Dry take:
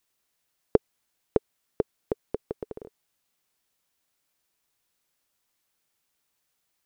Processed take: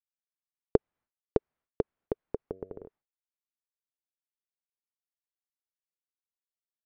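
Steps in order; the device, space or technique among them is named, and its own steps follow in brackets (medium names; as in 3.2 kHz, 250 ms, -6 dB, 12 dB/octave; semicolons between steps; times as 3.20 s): hearing-loss simulation (low-pass 1.6 kHz 12 dB/octave; expander -55 dBFS); 2.40–2.85 s: de-hum 94.44 Hz, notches 7; bass shelf 140 Hz +3.5 dB; trim -3 dB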